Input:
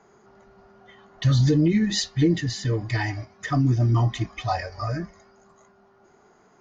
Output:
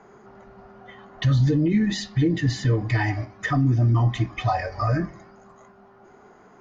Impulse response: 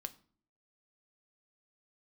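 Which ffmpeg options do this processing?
-filter_complex "[0:a]alimiter=limit=-20dB:level=0:latency=1:release=206,asplit=2[a][b];[1:a]atrim=start_sample=2205,lowpass=3.3k[c];[b][c]afir=irnorm=-1:irlink=0,volume=4.5dB[d];[a][d]amix=inputs=2:normalize=0"

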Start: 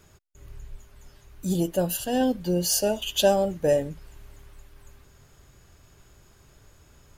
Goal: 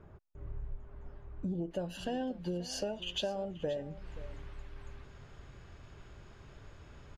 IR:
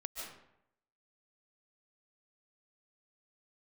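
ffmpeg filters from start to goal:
-af "asetnsamples=n=441:p=0,asendcmd='1.71 lowpass f 3400',lowpass=1.1k,acompressor=threshold=-37dB:ratio=6,aecho=1:1:530:0.141,volume=2.5dB"

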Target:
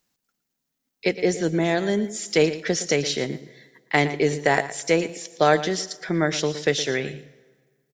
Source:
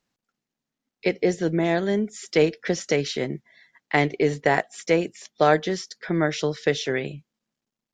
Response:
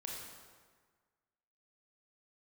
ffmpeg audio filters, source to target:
-filter_complex "[0:a]aemphasis=mode=production:type=50kf,aecho=1:1:115:0.2,asplit=2[a][b];[1:a]atrim=start_sample=2205,adelay=108[c];[b][c]afir=irnorm=-1:irlink=0,volume=-20dB[d];[a][d]amix=inputs=2:normalize=0"

